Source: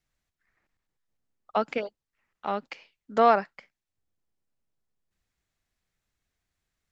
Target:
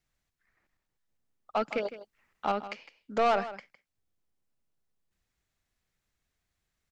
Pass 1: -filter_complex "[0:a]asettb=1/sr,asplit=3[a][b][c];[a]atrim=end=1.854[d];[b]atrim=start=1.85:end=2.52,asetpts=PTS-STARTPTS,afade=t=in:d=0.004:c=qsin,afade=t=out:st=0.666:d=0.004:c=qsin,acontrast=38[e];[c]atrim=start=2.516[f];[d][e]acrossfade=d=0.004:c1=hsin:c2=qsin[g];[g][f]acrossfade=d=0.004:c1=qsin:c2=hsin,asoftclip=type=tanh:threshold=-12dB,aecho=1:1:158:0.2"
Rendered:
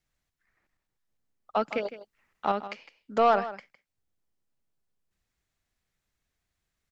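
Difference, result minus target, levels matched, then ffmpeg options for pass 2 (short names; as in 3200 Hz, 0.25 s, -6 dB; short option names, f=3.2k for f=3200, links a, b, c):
soft clip: distortion -8 dB
-filter_complex "[0:a]asettb=1/sr,asplit=3[a][b][c];[a]atrim=end=1.854[d];[b]atrim=start=1.85:end=2.52,asetpts=PTS-STARTPTS,afade=t=in:d=0.004:c=qsin,afade=t=out:st=0.666:d=0.004:c=qsin,acontrast=38[e];[c]atrim=start=2.516[f];[d][e]acrossfade=d=0.004:c1=hsin:c2=qsin[g];[g][f]acrossfade=d=0.004:c1=qsin:c2=hsin,asoftclip=type=tanh:threshold=-19.5dB,aecho=1:1:158:0.2"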